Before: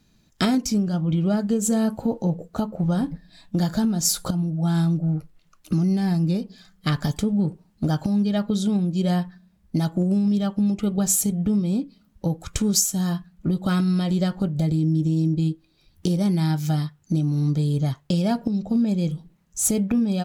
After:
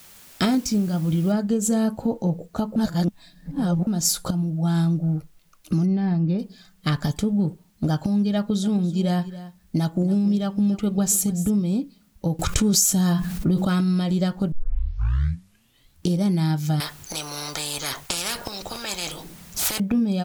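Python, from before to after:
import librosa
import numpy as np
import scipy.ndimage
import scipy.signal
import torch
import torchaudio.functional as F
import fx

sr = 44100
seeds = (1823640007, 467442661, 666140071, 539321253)

y = fx.noise_floor_step(x, sr, seeds[0], at_s=1.32, before_db=-48, after_db=-68, tilt_db=0.0)
y = fx.air_absorb(y, sr, metres=290.0, at=(5.85, 6.38), fade=0.02)
y = fx.echo_single(y, sr, ms=280, db=-16.0, at=(8.63, 11.49), fade=0.02)
y = fx.env_flatten(y, sr, amount_pct=70, at=(12.39, 13.65))
y = fx.spectral_comp(y, sr, ratio=10.0, at=(16.8, 19.8))
y = fx.edit(y, sr, fx.reverse_span(start_s=2.76, length_s=1.11),
    fx.tape_start(start_s=14.52, length_s=1.57), tone=tone)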